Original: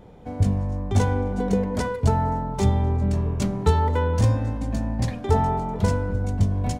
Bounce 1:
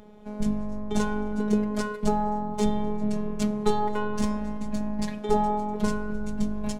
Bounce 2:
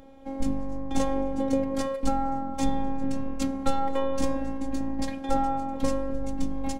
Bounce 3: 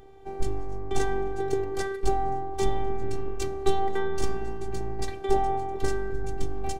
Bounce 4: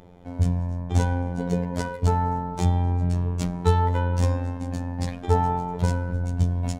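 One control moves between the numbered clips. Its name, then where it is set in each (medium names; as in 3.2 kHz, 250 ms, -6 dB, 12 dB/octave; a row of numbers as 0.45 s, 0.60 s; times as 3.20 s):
robot voice, frequency: 210 Hz, 270 Hz, 390 Hz, 88 Hz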